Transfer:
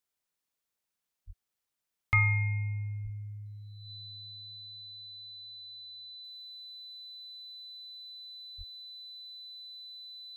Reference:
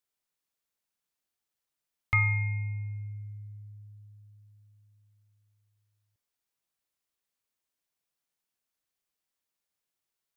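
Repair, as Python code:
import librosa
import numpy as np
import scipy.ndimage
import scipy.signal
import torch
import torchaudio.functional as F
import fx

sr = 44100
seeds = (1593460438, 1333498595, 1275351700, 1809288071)

y = fx.notch(x, sr, hz=4000.0, q=30.0)
y = fx.fix_deplosive(y, sr, at_s=(1.26, 2.13, 3.03, 8.57))
y = fx.fix_level(y, sr, at_s=6.24, step_db=-10.0)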